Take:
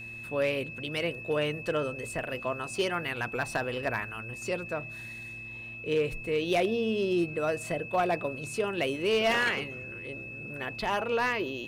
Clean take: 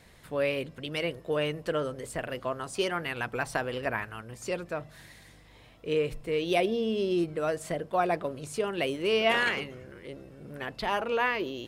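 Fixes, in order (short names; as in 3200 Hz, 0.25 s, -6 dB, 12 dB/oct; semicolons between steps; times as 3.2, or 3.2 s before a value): clip repair -20 dBFS; de-hum 114.8 Hz, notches 3; notch 2600 Hz, Q 30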